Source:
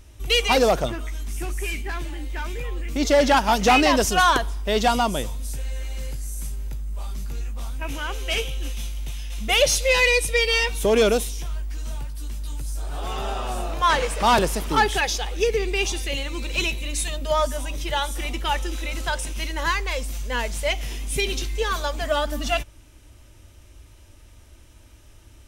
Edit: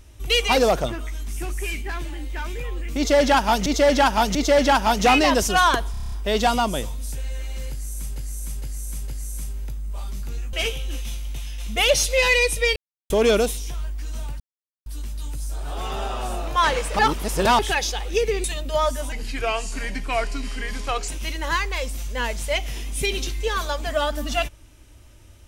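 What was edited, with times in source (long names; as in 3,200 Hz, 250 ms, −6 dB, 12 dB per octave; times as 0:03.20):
0:02.97–0:03.66: repeat, 3 plays
0:04.53: stutter 0.03 s, 8 plays
0:06.11–0:06.57: repeat, 4 plays
0:07.56–0:08.25: remove
0:10.48–0:10.82: silence
0:12.12: splice in silence 0.46 s
0:14.25–0:14.85: reverse
0:15.70–0:17.00: remove
0:17.68–0:19.23: play speed 79%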